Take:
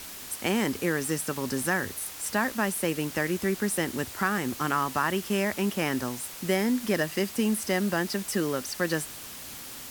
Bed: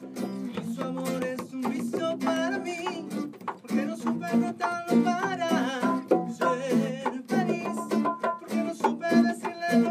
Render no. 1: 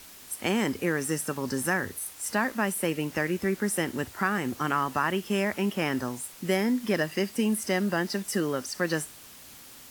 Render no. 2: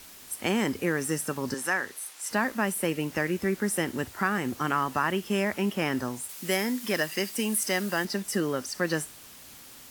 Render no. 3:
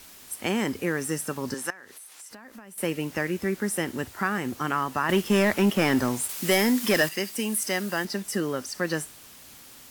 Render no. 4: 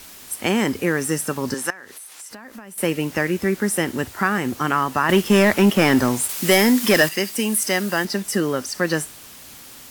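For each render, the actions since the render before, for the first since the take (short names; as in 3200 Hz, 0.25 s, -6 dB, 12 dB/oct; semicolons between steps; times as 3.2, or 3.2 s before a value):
noise print and reduce 7 dB
1.54–2.31 weighting filter A; 6.29–8.05 tilt +2 dB/oct
1.7–2.78 compressor 12:1, threshold -41 dBFS; 5.09–7.09 sample leveller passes 2
gain +6.5 dB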